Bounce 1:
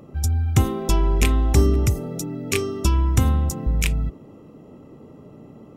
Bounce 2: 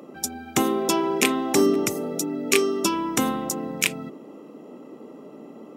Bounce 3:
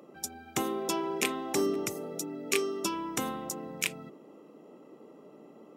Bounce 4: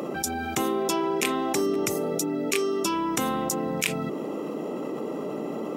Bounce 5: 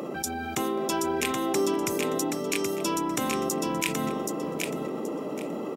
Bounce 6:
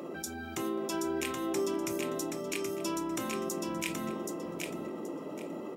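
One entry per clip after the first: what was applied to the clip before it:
high-pass 230 Hz 24 dB/octave; trim +4 dB
peaking EQ 250 Hz -5.5 dB 0.39 oct; trim -8.5 dB
level flattener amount 70%; trim +1 dB
feedback delay 776 ms, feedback 23%, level -4 dB; trim -2.5 dB
reverberation RT60 0.25 s, pre-delay 3 ms, DRR 5.5 dB; trim -8.5 dB

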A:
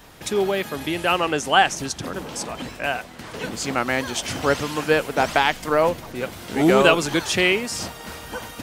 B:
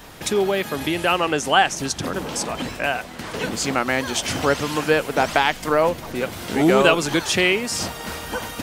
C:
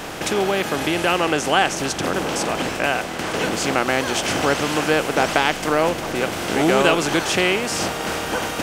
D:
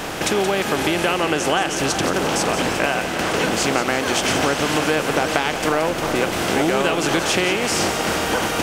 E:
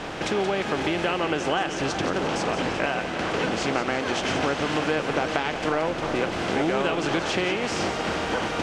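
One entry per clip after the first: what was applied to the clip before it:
hum notches 60/120 Hz; in parallel at +2 dB: compression, threshold -27 dBFS, peak gain reduction 16 dB; on the sum: trim -2 dB
spectral levelling over time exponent 0.6; trim -3.5 dB
compression, threshold -19 dBFS, peak gain reduction 8.5 dB; two-band feedback delay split 1.5 kHz, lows 367 ms, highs 175 ms, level -9 dB; trim +3.5 dB
distance through air 110 m; trim -4.5 dB; Vorbis 64 kbps 48 kHz

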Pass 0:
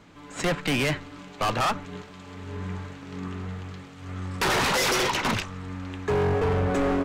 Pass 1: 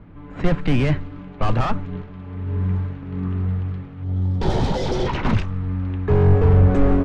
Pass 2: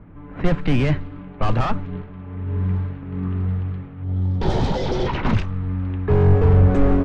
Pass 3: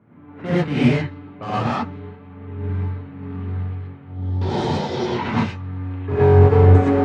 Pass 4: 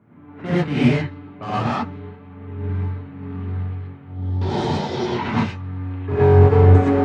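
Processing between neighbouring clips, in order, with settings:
RIAA curve playback; level-controlled noise filter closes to 2.4 kHz, open at -10 dBFS; time-frequency box 4.04–5.07 s, 950–3000 Hz -10 dB
level-controlled noise filter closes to 2.3 kHz, open at -10.5 dBFS
high-pass 100 Hz 24 dB/octave; gated-style reverb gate 140 ms rising, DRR -8 dB; upward expansion 1.5:1, over -19 dBFS; trim -2.5 dB
band-stop 510 Hz, Q 12

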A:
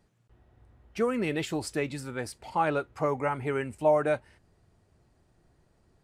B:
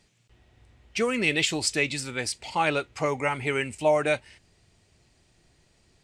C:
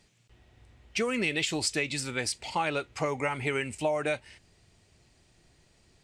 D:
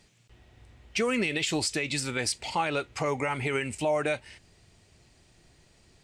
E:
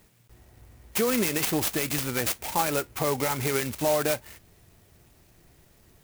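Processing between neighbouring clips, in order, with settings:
high-order bell 4.2 kHz +12.5 dB 2.4 oct; trim +1 dB
compression 6:1, threshold -25 dBFS, peak gain reduction 8 dB
peak limiter -20.5 dBFS, peak gain reduction 6 dB; trim +3 dB
sampling jitter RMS 0.082 ms; trim +2.5 dB

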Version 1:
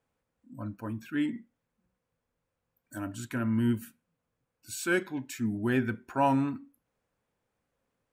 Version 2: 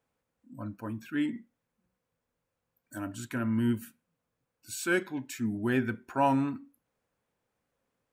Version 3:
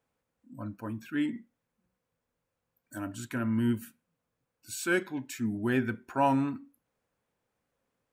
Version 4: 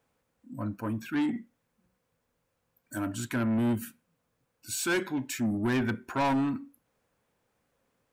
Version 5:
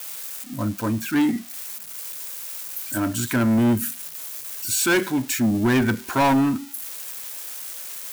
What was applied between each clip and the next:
bass shelf 87 Hz -5 dB
no audible change
saturation -29.5 dBFS, distortion -9 dB; trim +6 dB
zero-crossing glitches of -33.5 dBFS; trim +8.5 dB

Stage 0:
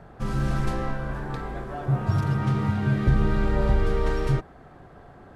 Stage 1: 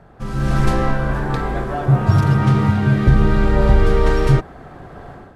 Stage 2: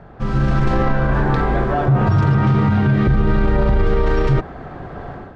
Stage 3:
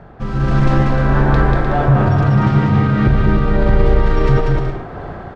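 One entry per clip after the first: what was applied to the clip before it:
level rider gain up to 13 dB
peak limiter -13 dBFS, peak gain reduction 11.5 dB; distance through air 130 m; trim +5.5 dB
tremolo 1.6 Hz, depth 35%; on a send: bouncing-ball echo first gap 190 ms, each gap 0.6×, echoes 5; on the sum: trim +2 dB

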